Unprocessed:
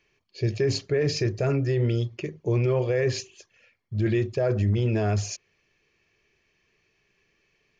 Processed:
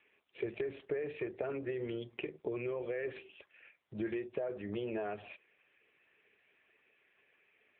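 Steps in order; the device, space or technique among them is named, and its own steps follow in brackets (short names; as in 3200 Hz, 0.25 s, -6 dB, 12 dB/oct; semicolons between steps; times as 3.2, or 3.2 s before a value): 1.7–3.05 dynamic EQ 710 Hz, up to -6 dB, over -37 dBFS, Q 0.97; voicemail (BPF 410–3000 Hz; compressor 10:1, threshold -38 dBFS, peak gain reduction 16 dB; gain +4.5 dB; AMR-NB 6.7 kbps 8000 Hz)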